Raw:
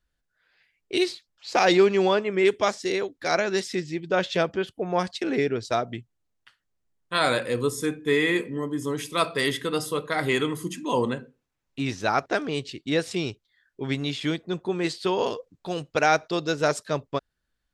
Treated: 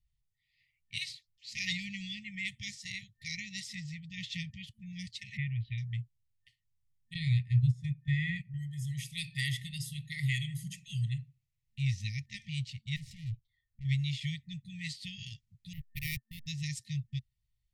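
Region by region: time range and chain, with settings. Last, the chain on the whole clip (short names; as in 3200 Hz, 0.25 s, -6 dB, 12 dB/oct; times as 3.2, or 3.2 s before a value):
5.37–5.78 steep low-pass 3300 Hz 48 dB/oct + upward compressor, threshold -32 dBFS
7.14–8.54 LPF 5400 Hz + gate -29 dBFS, range -12 dB + tilt shelf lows +7.5 dB, about 1300 Hz
12.96–13.85 tilt -2.5 dB/oct + tube stage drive 36 dB, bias 0.55
15.73–16.47 backlash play -22 dBFS + low-pass opened by the level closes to 2400 Hz, open at -15.5 dBFS + careless resampling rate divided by 3×, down none, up hold
whole clip: FFT band-reject 220–1800 Hz; resonant low shelf 160 Hz +7.5 dB, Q 3; gain -8 dB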